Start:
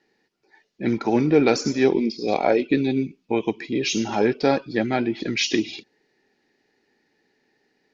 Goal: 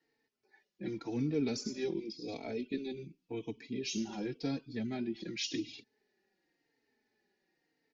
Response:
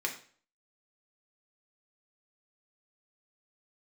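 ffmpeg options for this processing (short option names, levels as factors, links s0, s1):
-filter_complex "[0:a]acrossover=split=340|3000[s0][s1][s2];[s1]acompressor=threshold=0.00562:ratio=2[s3];[s0][s3][s2]amix=inputs=3:normalize=0,asplit=2[s4][s5];[s5]adelay=3.9,afreqshift=-0.9[s6];[s4][s6]amix=inputs=2:normalize=1,volume=0.376"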